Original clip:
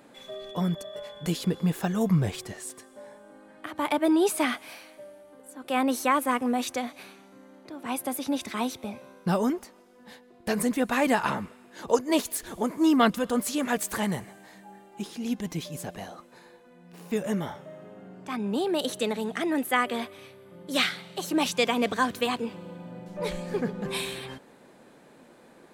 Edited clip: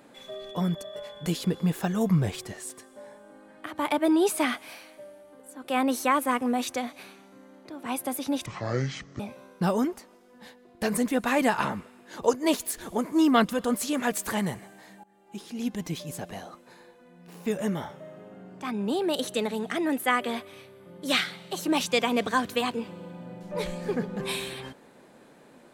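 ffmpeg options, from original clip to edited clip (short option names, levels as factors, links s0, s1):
-filter_complex "[0:a]asplit=4[s0][s1][s2][s3];[s0]atrim=end=8.464[s4];[s1]atrim=start=8.46:end=8.85,asetpts=PTS-STARTPTS,asetrate=23373,aresample=44100[s5];[s2]atrim=start=8.846:end=14.69,asetpts=PTS-STARTPTS,afade=t=out:st=5.84:d=0.004:c=hsin:silence=0.0891251[s6];[s3]atrim=start=14.69,asetpts=PTS-STARTPTS,afade=t=in:d=0.85:c=qsin:silence=0.0891251[s7];[s4][s5]acrossfade=d=0.004:c1=hsin:c2=hsin[s8];[s6][s7]concat=n=2:v=0:a=1[s9];[s8][s9]acrossfade=d=0.004:c1=hsin:c2=hsin"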